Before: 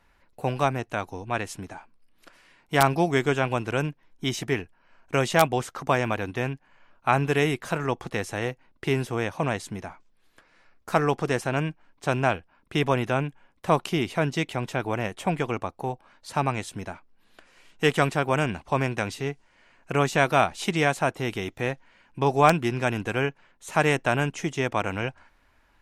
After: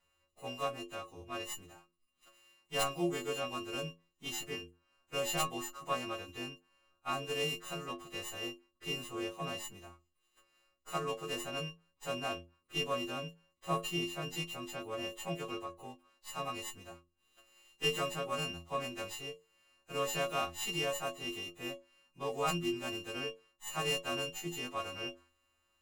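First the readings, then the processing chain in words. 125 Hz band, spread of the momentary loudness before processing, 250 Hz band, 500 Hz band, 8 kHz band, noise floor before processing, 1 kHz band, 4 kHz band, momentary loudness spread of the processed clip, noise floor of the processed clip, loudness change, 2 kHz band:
-18.0 dB, 12 LU, -14.0 dB, -13.0 dB, -4.0 dB, -64 dBFS, -14.0 dB, -3.5 dB, 12 LU, -79 dBFS, -12.0 dB, -12.0 dB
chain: partials quantised in pitch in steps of 2 st; inharmonic resonator 82 Hz, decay 0.36 s, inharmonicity 0.008; sliding maximum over 3 samples; trim -4 dB

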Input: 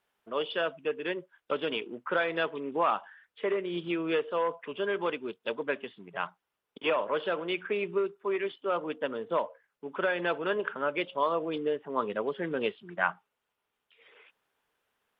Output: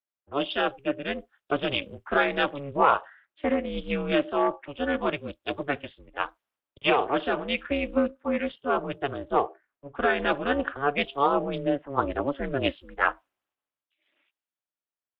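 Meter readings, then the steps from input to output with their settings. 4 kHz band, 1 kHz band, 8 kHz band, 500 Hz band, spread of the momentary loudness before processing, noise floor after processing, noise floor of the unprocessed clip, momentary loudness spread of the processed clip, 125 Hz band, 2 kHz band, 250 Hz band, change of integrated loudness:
+5.5 dB, +6.0 dB, no reading, +2.5 dB, 7 LU, under -85 dBFS, -84 dBFS, 9 LU, +8.5 dB, +4.0 dB, +7.0 dB, +4.5 dB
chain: ring modulator 140 Hz; three bands expanded up and down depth 70%; trim +7 dB

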